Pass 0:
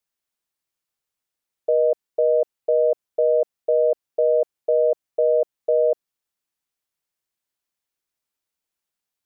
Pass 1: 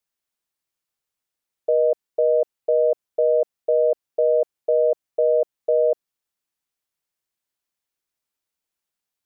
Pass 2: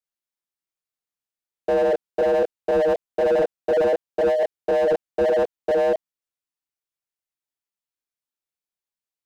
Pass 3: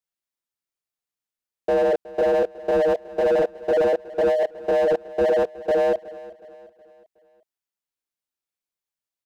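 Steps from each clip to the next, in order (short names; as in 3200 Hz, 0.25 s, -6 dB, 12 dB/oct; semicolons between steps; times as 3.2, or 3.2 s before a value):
nothing audible
chorus voices 2, 1.2 Hz, delay 25 ms, depth 3 ms; sample leveller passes 3; slew limiter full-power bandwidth 76 Hz
feedback echo 0.368 s, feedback 45%, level -19 dB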